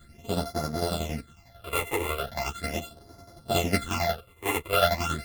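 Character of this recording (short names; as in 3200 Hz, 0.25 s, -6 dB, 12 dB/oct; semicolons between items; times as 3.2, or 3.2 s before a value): a buzz of ramps at a fixed pitch in blocks of 64 samples; phasing stages 8, 0.39 Hz, lowest notch 190–2800 Hz; tremolo saw down 11 Hz, depth 65%; a shimmering, thickened sound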